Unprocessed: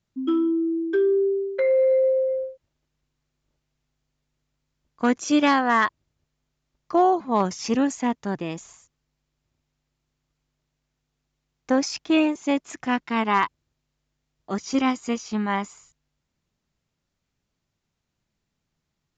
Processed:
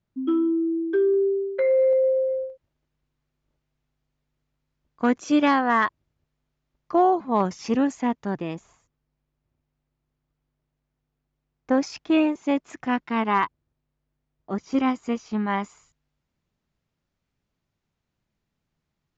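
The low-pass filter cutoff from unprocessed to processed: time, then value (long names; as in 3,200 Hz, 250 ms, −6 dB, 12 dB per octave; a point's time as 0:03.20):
low-pass filter 6 dB per octave
1,700 Hz
from 0:01.14 2,600 Hz
from 0:01.93 1,300 Hz
from 0:02.50 2,600 Hz
from 0:08.55 1,200 Hz
from 0:11.71 2,300 Hz
from 0:13.45 1,100 Hz
from 0:14.72 1,800 Hz
from 0:15.47 3,200 Hz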